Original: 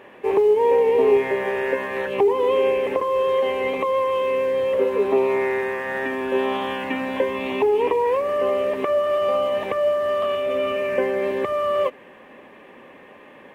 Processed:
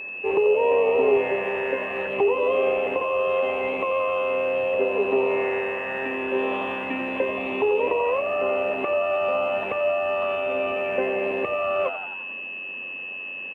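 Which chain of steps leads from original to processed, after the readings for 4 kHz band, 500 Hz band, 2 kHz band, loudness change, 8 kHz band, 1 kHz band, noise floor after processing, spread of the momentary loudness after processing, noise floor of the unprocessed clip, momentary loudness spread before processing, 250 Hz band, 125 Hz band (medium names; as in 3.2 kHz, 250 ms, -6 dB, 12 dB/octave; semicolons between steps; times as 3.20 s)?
-3.5 dB, -3.0 dB, +2.0 dB, -2.5 dB, no reading, -2.5 dB, -34 dBFS, 7 LU, -46 dBFS, 7 LU, -3.0 dB, -3.0 dB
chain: treble shelf 3.1 kHz -11 dB; whistle 2.6 kHz -29 dBFS; frequency-shifting echo 87 ms, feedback 57%, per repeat +92 Hz, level -11 dB; trim -3 dB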